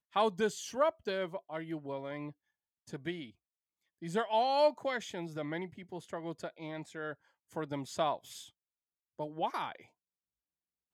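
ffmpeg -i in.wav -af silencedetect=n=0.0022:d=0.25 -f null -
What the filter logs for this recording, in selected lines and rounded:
silence_start: 2.32
silence_end: 2.87 | silence_duration: 0.55
silence_start: 3.30
silence_end: 4.02 | silence_duration: 0.71
silence_start: 7.15
silence_end: 7.52 | silence_duration: 0.37
silence_start: 8.49
silence_end: 9.19 | silence_duration: 0.70
silence_start: 9.85
silence_end: 10.93 | silence_duration: 1.08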